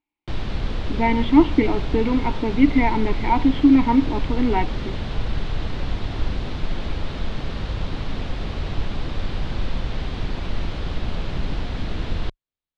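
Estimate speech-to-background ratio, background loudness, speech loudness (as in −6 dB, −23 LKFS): 9.5 dB, −29.5 LKFS, −20.0 LKFS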